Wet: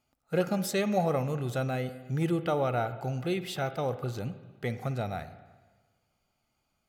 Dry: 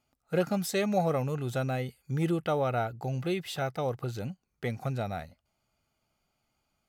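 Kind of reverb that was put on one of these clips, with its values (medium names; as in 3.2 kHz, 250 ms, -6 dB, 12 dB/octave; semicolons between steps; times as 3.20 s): spring tank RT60 1.4 s, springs 47/51/57 ms, chirp 80 ms, DRR 11.5 dB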